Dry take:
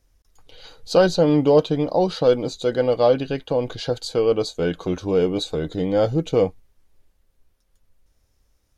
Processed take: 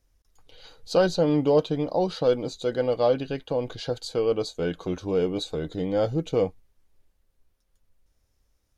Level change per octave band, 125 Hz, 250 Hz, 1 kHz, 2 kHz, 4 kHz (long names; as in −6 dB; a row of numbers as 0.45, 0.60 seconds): −5.0, −5.0, −5.0, −5.0, −5.0 decibels